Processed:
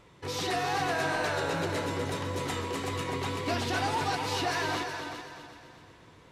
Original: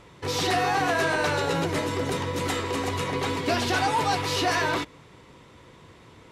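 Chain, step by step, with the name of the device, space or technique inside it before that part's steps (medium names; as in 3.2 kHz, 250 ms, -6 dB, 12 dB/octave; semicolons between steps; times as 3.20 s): multi-head tape echo (multi-head delay 126 ms, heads second and third, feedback 43%, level -8.5 dB; wow and flutter 25 cents); trim -6.5 dB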